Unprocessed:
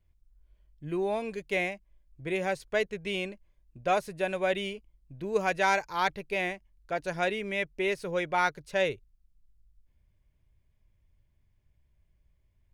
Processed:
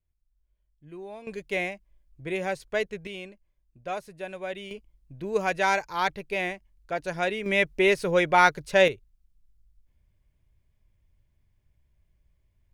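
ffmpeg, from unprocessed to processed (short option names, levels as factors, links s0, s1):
-af "asetnsamples=n=441:p=0,asendcmd='1.27 volume volume 0.5dB;3.07 volume volume -6.5dB;4.71 volume volume 1.5dB;7.46 volume volume 8dB;8.88 volume volume 1dB',volume=0.282"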